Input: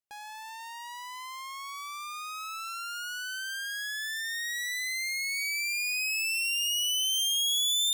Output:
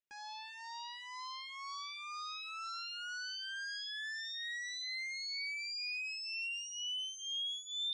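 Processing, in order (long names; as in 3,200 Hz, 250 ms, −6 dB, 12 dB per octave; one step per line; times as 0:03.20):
downward compressor, threshold −36 dBFS, peak gain reduction 10.5 dB
transistor ladder low-pass 5,500 Hz, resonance 50%
frequency shifter mixed with the dry sound −2 Hz
level +6.5 dB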